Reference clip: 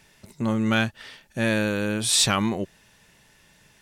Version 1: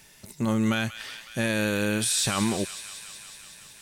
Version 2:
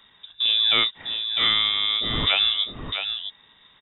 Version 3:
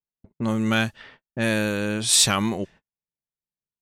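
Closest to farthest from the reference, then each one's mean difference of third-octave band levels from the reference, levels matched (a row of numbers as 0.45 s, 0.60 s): 3, 1, 2; 5.0 dB, 7.0 dB, 13.5 dB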